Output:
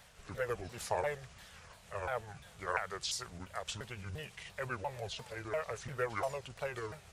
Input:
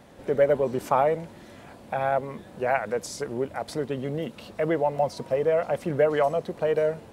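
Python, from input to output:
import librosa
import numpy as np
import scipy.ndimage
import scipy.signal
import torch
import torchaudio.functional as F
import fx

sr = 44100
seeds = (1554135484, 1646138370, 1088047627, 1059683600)

y = fx.pitch_ramps(x, sr, semitones=-7.5, every_ms=346)
y = fx.tone_stack(y, sr, knobs='10-0-10')
y = y * 10.0 ** (3.5 / 20.0)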